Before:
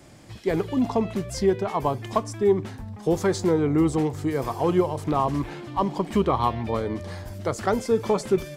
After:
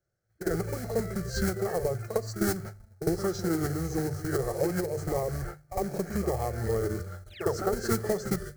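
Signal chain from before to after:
noise gate −32 dBFS, range −36 dB
high-shelf EQ 2,100 Hz −3.5 dB
mains-hum notches 50/100/150 Hz
downward compressor 5 to 1, threshold −28 dBFS, peak gain reduction 12 dB
floating-point word with a short mantissa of 2 bits
phaser with its sweep stopped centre 1,000 Hz, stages 6
sound drawn into the spectrogram fall, 0:07.33–0:07.63, 270–5,500 Hz −46 dBFS
backwards echo 54 ms −10 dB
formants moved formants −4 semitones
on a send at −21.5 dB: convolution reverb RT60 0.45 s, pre-delay 4 ms
on the sum: level +6.5 dB

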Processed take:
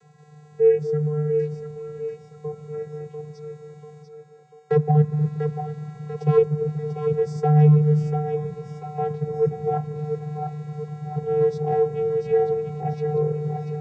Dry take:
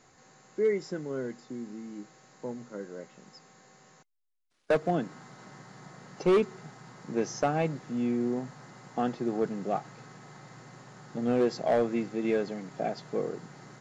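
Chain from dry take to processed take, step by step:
dynamic equaliser 3,300 Hz, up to −7 dB, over −51 dBFS, Q 0.75
channel vocoder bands 16, square 150 Hz
echo with a time of its own for lows and highs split 410 Hz, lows 239 ms, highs 692 ms, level −6 dB
level +8.5 dB

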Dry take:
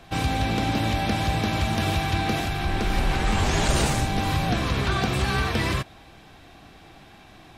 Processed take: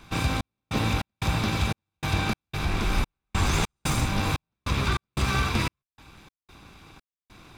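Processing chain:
lower of the sound and its delayed copy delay 0.81 ms
gate pattern "xxxx...xxx..x" 148 BPM −60 dB

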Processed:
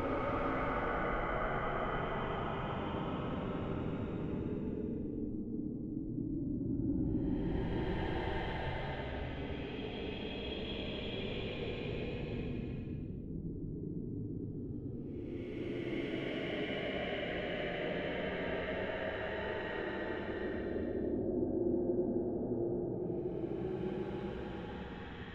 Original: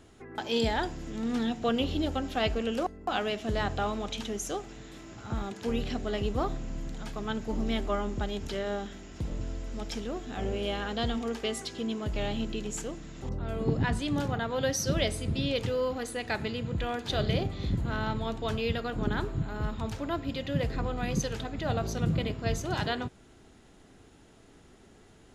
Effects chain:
random phases in short frames
auto-filter low-pass square 3.4 Hz 340–2,400 Hz
extreme stretch with random phases 27×, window 0.10 s, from 0:07.93
level −6.5 dB

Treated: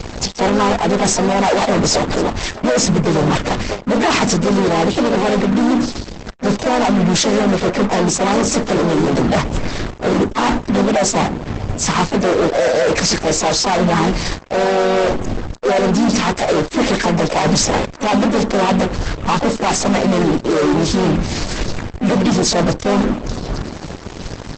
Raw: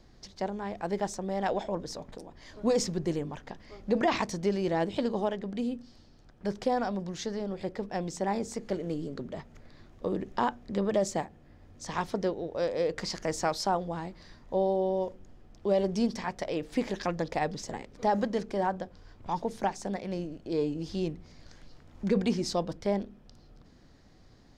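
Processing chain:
spectral magnitudes quantised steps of 15 dB
reversed playback
downward compressor 16 to 1, threshold −37 dBFS, peak gain reduction 17 dB
reversed playback
fuzz pedal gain 51 dB, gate −56 dBFS
pitch-shifted copies added +4 semitones −4 dB
Opus 12 kbit/s 48,000 Hz

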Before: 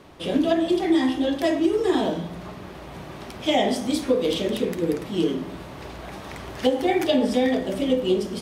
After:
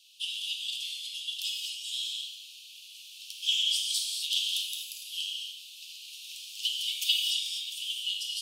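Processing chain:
Butterworth high-pass 2,700 Hz 96 dB per octave
0:00.70–0:01.28: compressor whose output falls as the input rises −44 dBFS, ratio −0.5
0:06.66–0:07.18: comb filter 4.1 ms, depth 82%
reverb whose tail is shaped and stops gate 290 ms flat, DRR −1 dB
level +2 dB

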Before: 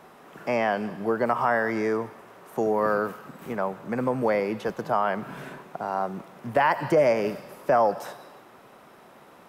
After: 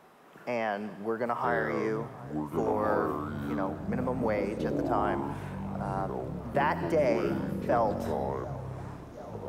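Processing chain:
delay with a band-pass on its return 735 ms, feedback 81%, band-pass 710 Hz, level −20 dB
delay with pitch and tempo change per echo 730 ms, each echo −7 semitones, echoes 3
level −6.5 dB

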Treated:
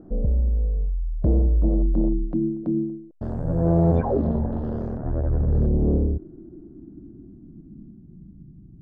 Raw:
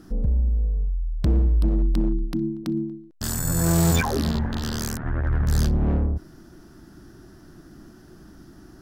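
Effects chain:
low-pass filter sweep 590 Hz → 160 Hz, 0:05.13–0:08.52

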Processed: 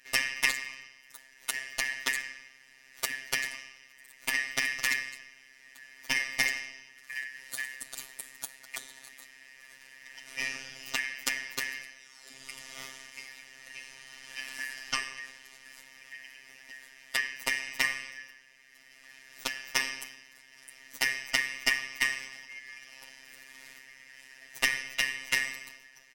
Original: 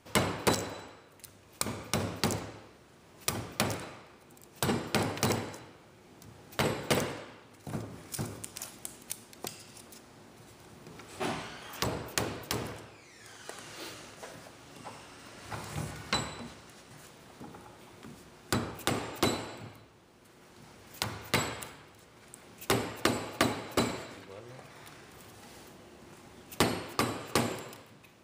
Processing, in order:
band-splitting scrambler in four parts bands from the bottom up 3142
comb filter 4.6 ms, depth 88%
speed change +8%
phases set to zero 133 Hz

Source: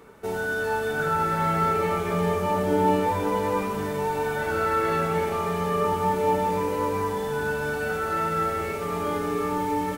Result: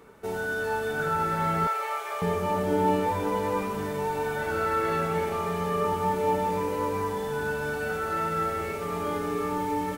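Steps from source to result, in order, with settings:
0:01.67–0:02.22: high-pass filter 610 Hz 24 dB per octave
level −2.5 dB

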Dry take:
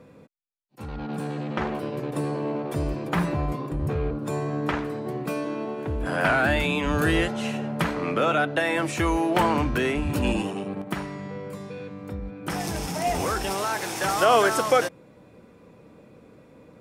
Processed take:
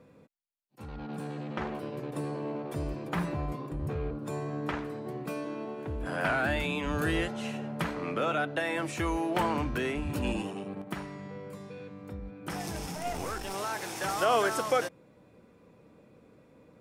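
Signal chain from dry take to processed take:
0:12.95–0:13.54: gain on one half-wave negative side −7 dB
level −7 dB

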